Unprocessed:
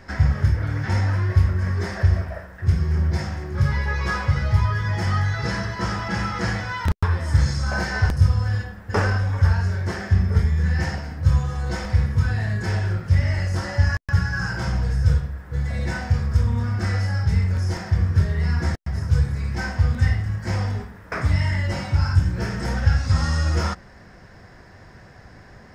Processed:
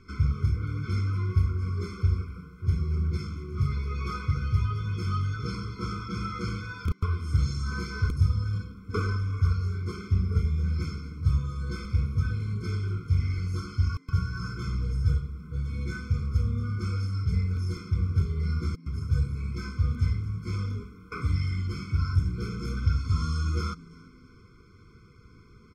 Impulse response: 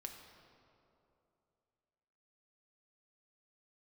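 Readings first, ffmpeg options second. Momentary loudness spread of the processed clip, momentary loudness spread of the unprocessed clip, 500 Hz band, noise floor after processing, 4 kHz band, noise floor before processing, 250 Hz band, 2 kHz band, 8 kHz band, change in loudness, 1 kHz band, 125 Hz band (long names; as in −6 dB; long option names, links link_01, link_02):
7 LU, 6 LU, −10.0 dB, −53 dBFS, −8.5 dB, −46 dBFS, −6.0 dB, −13.0 dB, below −10 dB, −7.0 dB, −10.0 dB, −6.5 dB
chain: -filter_complex "[0:a]asplit=3[link_01][link_02][link_03];[link_02]adelay=336,afreqshift=88,volume=-23dB[link_04];[link_03]adelay=672,afreqshift=176,volume=-31.9dB[link_05];[link_01][link_04][link_05]amix=inputs=3:normalize=0,afftfilt=real='re*eq(mod(floor(b*sr/1024/510),2),0)':imag='im*eq(mod(floor(b*sr/1024/510),2),0)':win_size=1024:overlap=0.75,volume=-6.5dB"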